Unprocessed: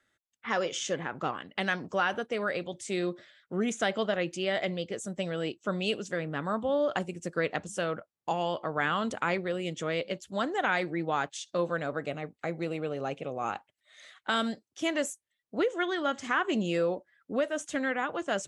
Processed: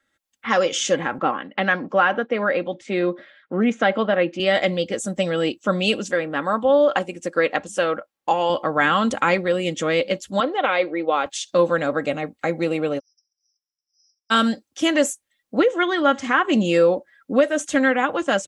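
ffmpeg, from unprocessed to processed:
ffmpeg -i in.wav -filter_complex "[0:a]asettb=1/sr,asplit=3[link_01][link_02][link_03];[link_01]atrim=end=1.184[link_04];[link_02]atrim=start=1.18:end=4.4,asetpts=PTS-STARTPTS,afade=type=in:duration=0.004:curve=qsin,afade=type=out:start_time=3.216:duration=0.004:curve=qsin,highpass=160,lowpass=2400[link_05];[link_03]atrim=start=4.396[link_06];[link_04][link_05]acrossfade=duration=0.004:curve1=hsin:curve2=qsin[link_07];[link_07][link_06]acrossfade=duration=0.004:curve1=qsin:curve2=hsin,asettb=1/sr,asplit=3[link_08][link_09][link_10];[link_08]atrim=end=6.114[link_11];[link_09]atrim=start=6.11:end=8.5,asetpts=PTS-STARTPTS,afade=type=in:duration=0.004:curve=qsin,afade=type=out:start_time=2.386:duration=0.004:curve=qsin,bass=frequency=250:gain=-9,treble=frequency=4000:gain=-5[link_12];[link_10]atrim=start=8.496[link_13];[link_11][link_12]acrossfade=duration=0.004:curve1=hsin:curve2=qsin[link_14];[link_14][link_13]acrossfade=duration=0.004:curve1=qsin:curve2=hsin,asettb=1/sr,asplit=3[link_15][link_16][link_17];[link_15]atrim=end=10.404[link_18];[link_16]atrim=start=10.4:end=11.26,asetpts=PTS-STARTPTS,afade=type=in:duration=0.004:curve=qsin,afade=type=out:start_time=0.856:duration=0.004:curve=qsin,highpass=380,equalizer=frequency=520:width_type=q:width=4:gain=4,equalizer=frequency=860:width_type=q:width=4:gain=-5,equalizer=frequency=1700:width_type=q:width=4:gain=-10,lowpass=frequency=3900:width=0.5412,lowpass=frequency=3900:width=1.3066[link_19];[link_17]atrim=start=11.256[link_20];[link_18][link_19]acrossfade=duration=0.004:curve1=hsin:curve2=qsin[link_21];[link_21][link_20]acrossfade=duration=0.004:curve1=qsin:curve2=hsin,asplit=3[link_22][link_23][link_24];[link_22]afade=type=out:start_time=12.98:duration=0.02[link_25];[link_23]asuperpass=centerf=5400:order=20:qfactor=5.5,afade=type=in:start_time=12.98:duration=0.02,afade=type=out:start_time=14.3:duration=0.02[link_26];[link_24]afade=type=in:start_time=14.3:duration=0.02[link_27];[link_25][link_26][link_27]amix=inputs=3:normalize=0,asettb=1/sr,asplit=3[link_28][link_29][link_30];[link_28]atrim=end=15.604[link_31];[link_29]atrim=start=15.6:end=16.53,asetpts=PTS-STARTPTS,afade=type=in:duration=0.004:curve=qsin,afade=type=out:start_time=0.926:duration=0.004:curve=qsin,highshelf=frequency=7000:gain=-11[link_32];[link_30]atrim=start=16.526[link_33];[link_31][link_32]acrossfade=duration=0.004:curve1=hsin:curve2=qsin[link_34];[link_34][link_33]acrossfade=duration=0.004:curve1=qsin:curve2=hsin,aecho=1:1:3.7:0.43,dynaudnorm=framelen=120:gausssize=3:maxgain=10dB" out.wav

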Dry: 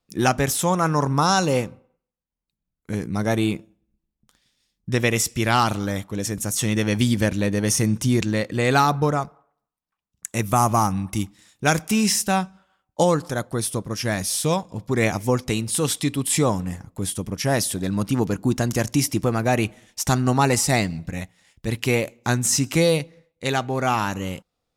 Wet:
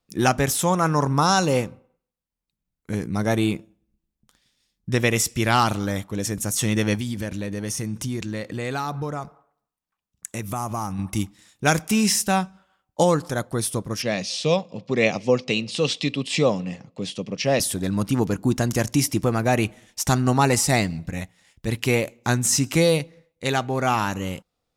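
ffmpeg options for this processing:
ffmpeg -i in.wav -filter_complex "[0:a]asettb=1/sr,asplit=3[link_01][link_02][link_03];[link_01]atrim=end=6.954[link_04];[link_02]atrim=start=6.95:end=10.99,asetpts=PTS-STARTPTS,afade=type=in:duration=0.004:curve=qsin,afade=type=out:start_time=4.036:duration=0.004:curve=qsin,acompressor=threshold=-28dB:ratio=2.5:attack=3.2:release=140:knee=1:detection=peak[link_05];[link_03]atrim=start=10.986[link_06];[link_04][link_05]acrossfade=duration=0.004:curve1=hsin:curve2=qsin[link_07];[link_07][link_06]acrossfade=duration=0.004:curve1=qsin:curve2=hsin,asettb=1/sr,asplit=3[link_08][link_09][link_10];[link_08]atrim=end=14.024[link_11];[link_09]atrim=start=14.02:end=17.6,asetpts=PTS-STARTPTS,afade=type=in:duration=0.004:curve=qsin,afade=type=out:start_time=3.576:duration=0.004:curve=qsin,highpass=frequency=140:width=0.5412,highpass=frequency=140:width=1.3066,equalizer=frequency=320:width_type=q:width=4:gain=-4,equalizer=frequency=530:width_type=q:width=4:gain=6,equalizer=frequency=930:width_type=q:width=4:gain=-6,equalizer=frequency=1500:width_type=q:width=4:gain=-9,equalizer=frequency=2700:width_type=q:width=4:gain=9,equalizer=frequency=4300:width_type=q:width=4:gain=4,lowpass=frequency=5900:width=0.5412,lowpass=frequency=5900:width=1.3066[link_12];[link_10]atrim=start=17.596[link_13];[link_11][link_12]acrossfade=duration=0.004:curve1=hsin:curve2=qsin[link_14];[link_14][link_13]acrossfade=duration=0.004:curve1=qsin:curve2=hsin" out.wav

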